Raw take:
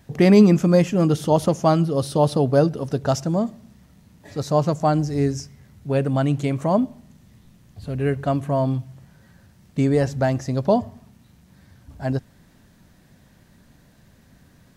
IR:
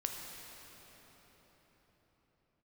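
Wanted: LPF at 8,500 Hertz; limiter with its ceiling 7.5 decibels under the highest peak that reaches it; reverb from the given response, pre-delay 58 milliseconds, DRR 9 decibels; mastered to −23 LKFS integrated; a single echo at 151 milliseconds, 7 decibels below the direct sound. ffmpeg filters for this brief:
-filter_complex "[0:a]lowpass=8500,alimiter=limit=-10.5dB:level=0:latency=1,aecho=1:1:151:0.447,asplit=2[link_01][link_02];[1:a]atrim=start_sample=2205,adelay=58[link_03];[link_02][link_03]afir=irnorm=-1:irlink=0,volume=-10.5dB[link_04];[link_01][link_04]amix=inputs=2:normalize=0,volume=-1.5dB"

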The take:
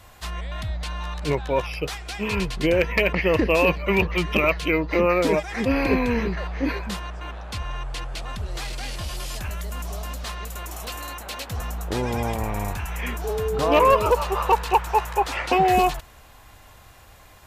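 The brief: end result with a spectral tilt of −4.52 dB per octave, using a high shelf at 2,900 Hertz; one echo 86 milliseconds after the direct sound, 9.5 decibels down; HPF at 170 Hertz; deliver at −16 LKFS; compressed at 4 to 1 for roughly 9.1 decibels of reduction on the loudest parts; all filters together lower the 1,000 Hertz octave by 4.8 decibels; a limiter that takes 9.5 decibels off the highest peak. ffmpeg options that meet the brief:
ffmpeg -i in.wav -af "highpass=170,equalizer=frequency=1000:width_type=o:gain=-5.5,highshelf=frequency=2900:gain=-6,acompressor=threshold=-27dB:ratio=4,alimiter=limit=-23dB:level=0:latency=1,aecho=1:1:86:0.335,volume=18dB" out.wav

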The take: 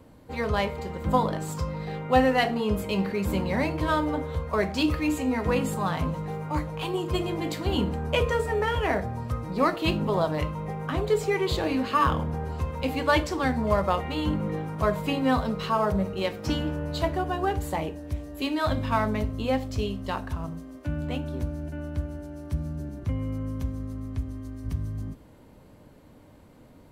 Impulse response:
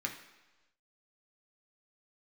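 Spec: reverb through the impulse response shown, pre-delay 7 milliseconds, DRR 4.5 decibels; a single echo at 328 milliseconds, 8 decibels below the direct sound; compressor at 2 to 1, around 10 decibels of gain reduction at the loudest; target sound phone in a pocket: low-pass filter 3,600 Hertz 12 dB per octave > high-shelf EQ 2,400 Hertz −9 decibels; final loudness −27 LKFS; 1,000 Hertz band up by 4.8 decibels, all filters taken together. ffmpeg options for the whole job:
-filter_complex "[0:a]equalizer=frequency=1000:width_type=o:gain=7.5,acompressor=threshold=-31dB:ratio=2,aecho=1:1:328:0.398,asplit=2[link_01][link_02];[1:a]atrim=start_sample=2205,adelay=7[link_03];[link_02][link_03]afir=irnorm=-1:irlink=0,volume=-7.5dB[link_04];[link_01][link_04]amix=inputs=2:normalize=0,lowpass=3600,highshelf=frequency=2400:gain=-9,volume=4dB"

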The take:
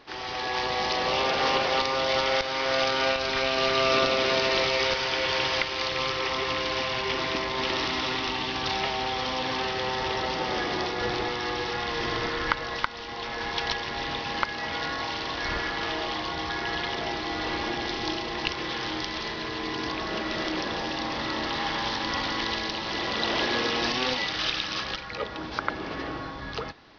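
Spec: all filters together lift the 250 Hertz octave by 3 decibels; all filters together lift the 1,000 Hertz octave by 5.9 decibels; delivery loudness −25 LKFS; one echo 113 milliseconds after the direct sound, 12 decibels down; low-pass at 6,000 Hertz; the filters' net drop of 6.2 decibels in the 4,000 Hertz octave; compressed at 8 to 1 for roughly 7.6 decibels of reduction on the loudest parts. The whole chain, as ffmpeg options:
ffmpeg -i in.wav -af "lowpass=6000,equalizer=frequency=250:width_type=o:gain=3.5,equalizer=frequency=1000:width_type=o:gain=7.5,equalizer=frequency=4000:width_type=o:gain=-8,acompressor=threshold=-24dB:ratio=8,aecho=1:1:113:0.251,volume=3.5dB" out.wav

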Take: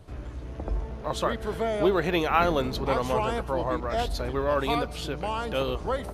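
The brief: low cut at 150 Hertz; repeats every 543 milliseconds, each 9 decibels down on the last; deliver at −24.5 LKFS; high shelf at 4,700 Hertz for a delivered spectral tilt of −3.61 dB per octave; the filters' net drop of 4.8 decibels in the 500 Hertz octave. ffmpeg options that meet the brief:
ffmpeg -i in.wav -af "highpass=150,equalizer=frequency=500:width_type=o:gain=-6,highshelf=frequency=4700:gain=-7.5,aecho=1:1:543|1086|1629|2172:0.355|0.124|0.0435|0.0152,volume=5.5dB" out.wav

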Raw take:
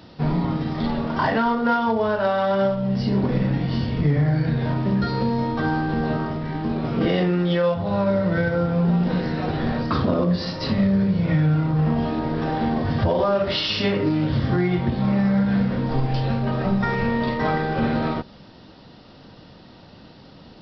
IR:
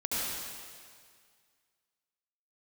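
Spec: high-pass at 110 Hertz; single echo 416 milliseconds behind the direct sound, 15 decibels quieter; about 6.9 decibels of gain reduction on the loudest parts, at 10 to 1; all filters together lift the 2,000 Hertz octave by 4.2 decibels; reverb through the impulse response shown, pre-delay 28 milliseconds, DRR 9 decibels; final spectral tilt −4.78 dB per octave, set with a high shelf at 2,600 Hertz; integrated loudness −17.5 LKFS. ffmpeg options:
-filter_complex "[0:a]highpass=110,equalizer=frequency=2000:width_type=o:gain=3,highshelf=frequency=2600:gain=6,acompressor=threshold=-23dB:ratio=10,aecho=1:1:416:0.178,asplit=2[link_01][link_02];[1:a]atrim=start_sample=2205,adelay=28[link_03];[link_02][link_03]afir=irnorm=-1:irlink=0,volume=-16.5dB[link_04];[link_01][link_04]amix=inputs=2:normalize=0,volume=9.5dB"

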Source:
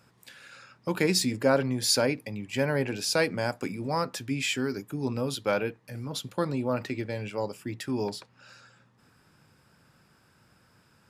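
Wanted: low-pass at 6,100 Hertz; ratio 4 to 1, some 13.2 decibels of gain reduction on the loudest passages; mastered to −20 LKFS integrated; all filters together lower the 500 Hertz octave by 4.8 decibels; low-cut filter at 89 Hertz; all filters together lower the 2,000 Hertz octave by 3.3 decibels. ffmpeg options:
ffmpeg -i in.wav -af "highpass=89,lowpass=6100,equalizer=frequency=500:width_type=o:gain=-5.5,equalizer=frequency=2000:width_type=o:gain=-4,acompressor=threshold=-38dB:ratio=4,volume=21dB" out.wav

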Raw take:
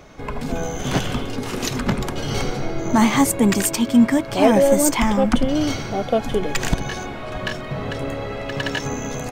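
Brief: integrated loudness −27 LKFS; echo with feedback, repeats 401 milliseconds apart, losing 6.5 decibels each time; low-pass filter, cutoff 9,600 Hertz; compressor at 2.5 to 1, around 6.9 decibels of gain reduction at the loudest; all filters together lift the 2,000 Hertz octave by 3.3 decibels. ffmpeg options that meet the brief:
ffmpeg -i in.wav -af "lowpass=9600,equalizer=frequency=2000:width_type=o:gain=4,acompressor=threshold=-20dB:ratio=2.5,aecho=1:1:401|802|1203|1604|2005|2406:0.473|0.222|0.105|0.0491|0.0231|0.0109,volume=-3.5dB" out.wav

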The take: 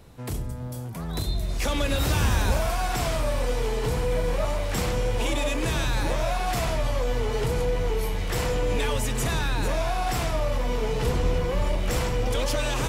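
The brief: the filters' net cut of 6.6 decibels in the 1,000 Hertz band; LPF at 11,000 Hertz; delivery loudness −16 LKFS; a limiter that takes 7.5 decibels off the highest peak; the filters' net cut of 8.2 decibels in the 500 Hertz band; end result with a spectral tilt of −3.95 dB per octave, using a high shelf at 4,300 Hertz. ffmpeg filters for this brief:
ffmpeg -i in.wav -af "lowpass=11000,equalizer=frequency=500:width_type=o:gain=-8,equalizer=frequency=1000:width_type=o:gain=-6,highshelf=frequency=4300:gain=4.5,volume=13.5dB,alimiter=limit=-5.5dB:level=0:latency=1" out.wav

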